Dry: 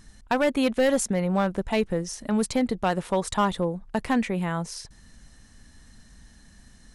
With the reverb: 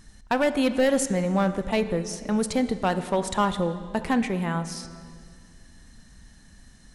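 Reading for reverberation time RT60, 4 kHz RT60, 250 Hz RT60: 2.0 s, 1.7 s, 2.5 s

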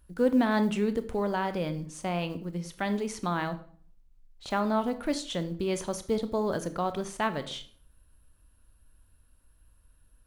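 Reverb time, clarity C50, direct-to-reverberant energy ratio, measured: 0.50 s, 14.0 dB, 10.0 dB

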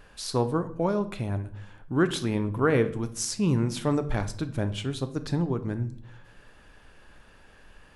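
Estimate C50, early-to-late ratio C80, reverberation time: 15.0 dB, 18.0 dB, 0.60 s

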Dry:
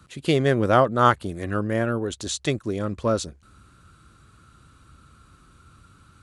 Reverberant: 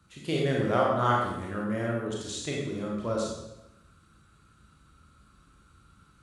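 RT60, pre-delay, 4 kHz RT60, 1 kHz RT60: 0.90 s, 25 ms, 0.80 s, 0.90 s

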